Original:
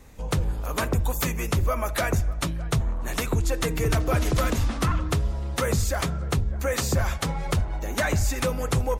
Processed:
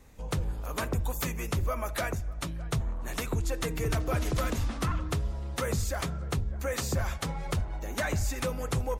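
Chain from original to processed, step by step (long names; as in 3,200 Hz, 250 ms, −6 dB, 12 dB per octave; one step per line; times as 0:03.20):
0:02.07–0:02.60: downward compressor 4 to 1, threshold −24 dBFS, peak gain reduction 5 dB
level −6 dB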